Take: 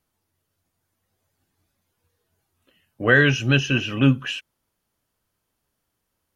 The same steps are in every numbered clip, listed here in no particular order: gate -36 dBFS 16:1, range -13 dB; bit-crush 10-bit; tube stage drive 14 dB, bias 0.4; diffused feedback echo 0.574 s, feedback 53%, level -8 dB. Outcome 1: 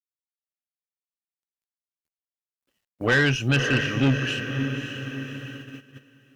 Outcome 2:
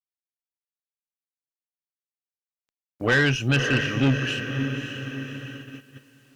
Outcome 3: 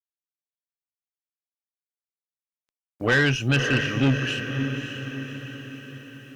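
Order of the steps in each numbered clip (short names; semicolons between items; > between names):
diffused feedback echo > bit-crush > gate > tube stage; diffused feedback echo > gate > bit-crush > tube stage; gate > diffused feedback echo > bit-crush > tube stage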